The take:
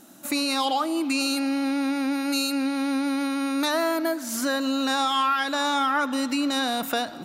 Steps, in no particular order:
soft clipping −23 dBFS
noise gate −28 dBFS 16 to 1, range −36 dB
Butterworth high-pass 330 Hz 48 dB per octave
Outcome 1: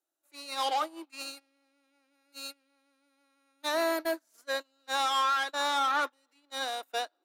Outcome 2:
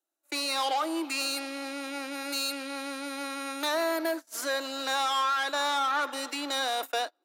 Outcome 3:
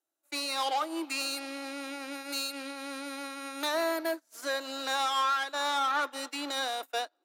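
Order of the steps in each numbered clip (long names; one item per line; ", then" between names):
soft clipping, then Butterworth high-pass, then noise gate
noise gate, then soft clipping, then Butterworth high-pass
soft clipping, then noise gate, then Butterworth high-pass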